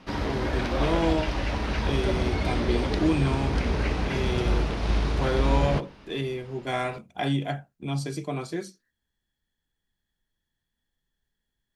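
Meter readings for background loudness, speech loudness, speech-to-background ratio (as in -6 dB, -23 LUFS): -28.0 LUFS, -30.0 LUFS, -2.0 dB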